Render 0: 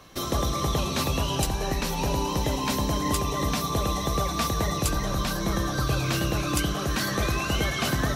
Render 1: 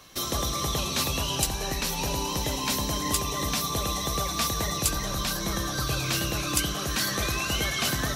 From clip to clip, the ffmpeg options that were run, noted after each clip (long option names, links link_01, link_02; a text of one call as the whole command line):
ffmpeg -i in.wav -af "highshelf=frequency=2100:gain=9.5,volume=-4.5dB" out.wav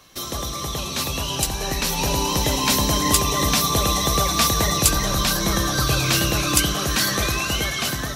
ffmpeg -i in.wav -af "dynaudnorm=framelen=710:gausssize=5:maxgain=11.5dB" out.wav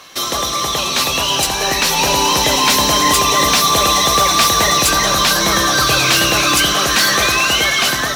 ffmpeg -i in.wav -filter_complex "[0:a]asplit=2[link_01][link_02];[link_02]highpass=frequency=720:poles=1,volume=20dB,asoftclip=type=tanh:threshold=-2dB[link_03];[link_01][link_03]amix=inputs=2:normalize=0,lowpass=frequency=4800:poles=1,volume=-6dB,acrusher=bits=6:mode=log:mix=0:aa=0.000001" out.wav